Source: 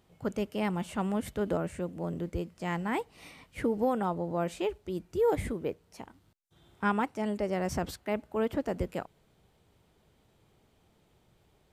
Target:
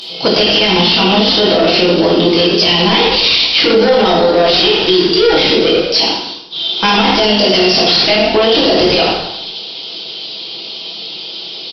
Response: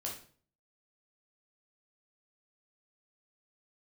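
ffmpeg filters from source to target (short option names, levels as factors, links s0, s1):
-filter_complex "[0:a]aecho=1:1:6.1:0.51,acrossover=split=210[s0][s1];[s0]acrusher=bits=3:mix=0:aa=0.5[s2];[s2][s1]amix=inputs=2:normalize=0,aexciter=amount=14.3:drive=7:freq=2900,aresample=11025,asoftclip=type=tanh:threshold=0.0266,aresample=44100,asplit=6[s3][s4][s5][s6][s7][s8];[s4]adelay=81,afreqshift=41,volume=0.237[s9];[s5]adelay=162,afreqshift=82,volume=0.123[s10];[s6]adelay=243,afreqshift=123,volume=0.0638[s11];[s7]adelay=324,afreqshift=164,volume=0.0335[s12];[s8]adelay=405,afreqshift=205,volume=0.0174[s13];[s3][s9][s10][s11][s12][s13]amix=inputs=6:normalize=0[s14];[1:a]atrim=start_sample=2205,asetrate=29106,aresample=44100[s15];[s14][s15]afir=irnorm=-1:irlink=0,alimiter=level_in=25.1:limit=0.891:release=50:level=0:latency=1,volume=0.891"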